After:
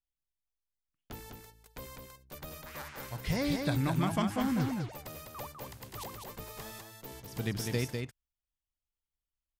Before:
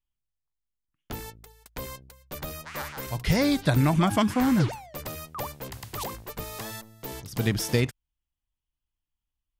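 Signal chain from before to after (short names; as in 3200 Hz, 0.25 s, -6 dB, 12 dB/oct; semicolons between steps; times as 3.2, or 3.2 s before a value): echo 0.201 s -4.5 dB; gain -9 dB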